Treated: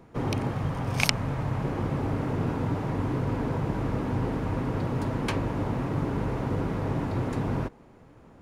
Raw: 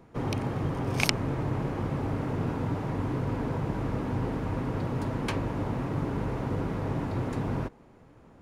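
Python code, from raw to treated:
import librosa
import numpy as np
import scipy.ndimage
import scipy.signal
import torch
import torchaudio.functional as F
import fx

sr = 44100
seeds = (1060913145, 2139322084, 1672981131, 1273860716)

y = fx.peak_eq(x, sr, hz=350.0, db=-9.0, octaves=0.74, at=(0.51, 1.64))
y = y * librosa.db_to_amplitude(2.0)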